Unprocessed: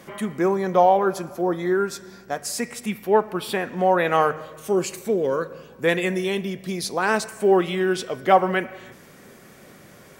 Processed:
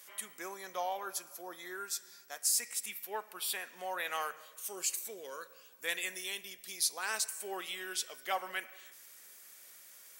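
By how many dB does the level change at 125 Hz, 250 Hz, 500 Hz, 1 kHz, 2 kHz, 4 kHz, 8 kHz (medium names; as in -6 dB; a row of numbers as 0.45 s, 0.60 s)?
under -35 dB, -29.0 dB, -24.5 dB, -18.5 dB, -12.0 dB, -5.5 dB, +0.5 dB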